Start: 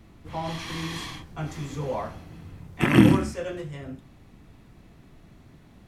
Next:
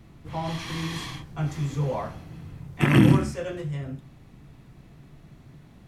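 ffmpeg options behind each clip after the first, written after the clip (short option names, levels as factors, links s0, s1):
-af "equalizer=f=140:t=o:w=0.31:g=9,alimiter=level_in=1.88:limit=0.891:release=50:level=0:latency=1,volume=0.531"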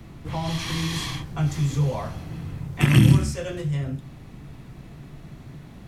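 -filter_complex "[0:a]acrossover=split=150|3000[s0][s1][s2];[s1]acompressor=threshold=0.00794:ratio=2[s3];[s0][s3][s2]amix=inputs=3:normalize=0,volume=2.37"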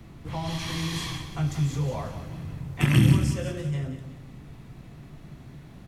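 -af "aecho=1:1:181|362|543|724:0.299|0.119|0.0478|0.0191,volume=0.668"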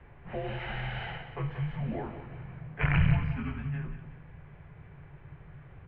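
-af "asubboost=boost=4:cutoff=160,highpass=f=200:t=q:w=0.5412,highpass=f=200:t=q:w=1.307,lowpass=f=2800:t=q:w=0.5176,lowpass=f=2800:t=q:w=0.7071,lowpass=f=2800:t=q:w=1.932,afreqshift=-290"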